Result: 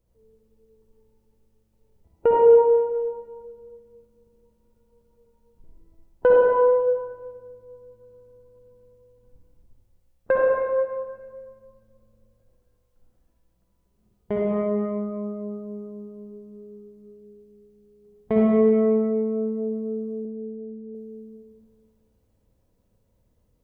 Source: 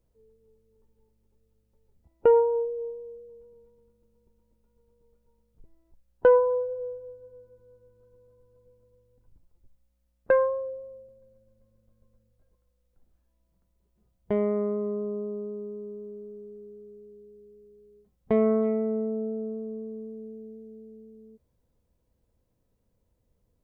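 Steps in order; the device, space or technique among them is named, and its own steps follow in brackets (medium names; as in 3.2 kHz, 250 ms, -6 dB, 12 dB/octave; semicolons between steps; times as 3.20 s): stairwell (reverberation RT60 1.7 s, pre-delay 50 ms, DRR -4 dB); 20.25–20.95 s: low-pass 1 kHz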